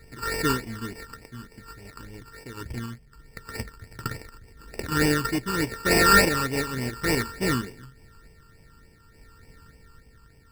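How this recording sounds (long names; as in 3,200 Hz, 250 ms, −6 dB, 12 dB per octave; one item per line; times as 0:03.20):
a buzz of ramps at a fixed pitch in blocks of 32 samples
sample-and-hold tremolo
aliases and images of a low sample rate 3,200 Hz, jitter 0%
phaser sweep stages 12, 3.4 Hz, lowest notch 650–1,300 Hz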